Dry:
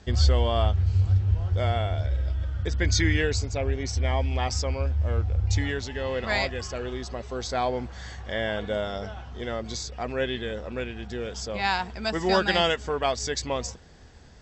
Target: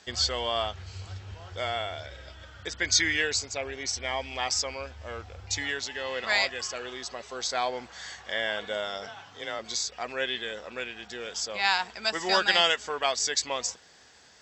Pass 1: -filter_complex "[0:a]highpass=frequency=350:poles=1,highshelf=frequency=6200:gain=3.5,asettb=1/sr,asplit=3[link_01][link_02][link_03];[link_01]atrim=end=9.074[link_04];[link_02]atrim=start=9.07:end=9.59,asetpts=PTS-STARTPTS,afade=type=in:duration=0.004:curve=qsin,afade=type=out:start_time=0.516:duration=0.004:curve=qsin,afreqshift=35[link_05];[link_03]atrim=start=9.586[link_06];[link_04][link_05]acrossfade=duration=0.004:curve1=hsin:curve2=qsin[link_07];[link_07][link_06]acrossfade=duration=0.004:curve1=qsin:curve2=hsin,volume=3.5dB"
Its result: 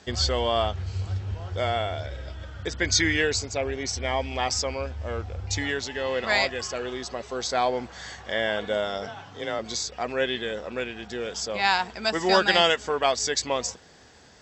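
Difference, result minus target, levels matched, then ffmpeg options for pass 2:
250 Hz band +7.0 dB
-filter_complex "[0:a]highpass=frequency=1300:poles=1,highshelf=frequency=6200:gain=3.5,asettb=1/sr,asplit=3[link_01][link_02][link_03];[link_01]atrim=end=9.074[link_04];[link_02]atrim=start=9.07:end=9.59,asetpts=PTS-STARTPTS,afade=type=in:duration=0.004:curve=qsin,afade=type=out:start_time=0.516:duration=0.004:curve=qsin,afreqshift=35[link_05];[link_03]atrim=start=9.586[link_06];[link_04][link_05]acrossfade=duration=0.004:curve1=hsin:curve2=qsin[link_07];[link_07][link_06]acrossfade=duration=0.004:curve1=qsin:curve2=hsin,volume=3.5dB"

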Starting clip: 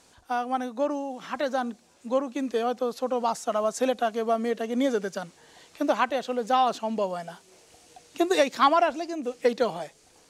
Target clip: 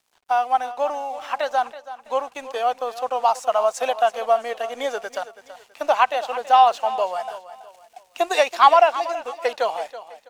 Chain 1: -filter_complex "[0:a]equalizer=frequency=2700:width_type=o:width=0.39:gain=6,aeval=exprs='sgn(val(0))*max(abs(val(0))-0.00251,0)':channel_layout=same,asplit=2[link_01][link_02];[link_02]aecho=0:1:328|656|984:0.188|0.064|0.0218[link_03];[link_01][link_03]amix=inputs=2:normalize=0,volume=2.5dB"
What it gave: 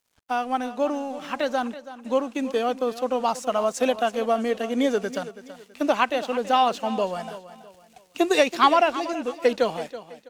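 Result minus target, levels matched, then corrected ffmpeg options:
1,000 Hz band −3.0 dB
-filter_complex "[0:a]highpass=frequency=750:width_type=q:width=2.2,equalizer=frequency=2700:width_type=o:width=0.39:gain=6,aeval=exprs='sgn(val(0))*max(abs(val(0))-0.00251,0)':channel_layout=same,asplit=2[link_01][link_02];[link_02]aecho=0:1:328|656|984:0.188|0.064|0.0218[link_03];[link_01][link_03]amix=inputs=2:normalize=0,volume=2.5dB"

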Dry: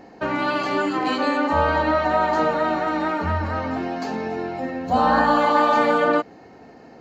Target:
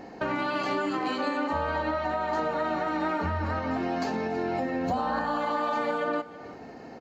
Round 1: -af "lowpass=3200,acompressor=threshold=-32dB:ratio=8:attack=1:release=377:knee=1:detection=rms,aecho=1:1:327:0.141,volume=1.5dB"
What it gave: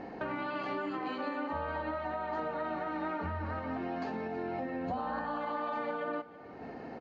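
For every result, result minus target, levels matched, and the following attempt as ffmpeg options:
downward compressor: peak gain reduction +7.5 dB; 4,000 Hz band −3.5 dB
-af "lowpass=3200,acompressor=threshold=-23.5dB:ratio=8:attack=1:release=377:knee=1:detection=rms,aecho=1:1:327:0.141,volume=1.5dB"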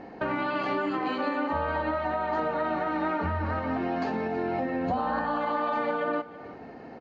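4,000 Hz band −4.0 dB
-af "acompressor=threshold=-23.5dB:ratio=8:attack=1:release=377:knee=1:detection=rms,aecho=1:1:327:0.141,volume=1.5dB"

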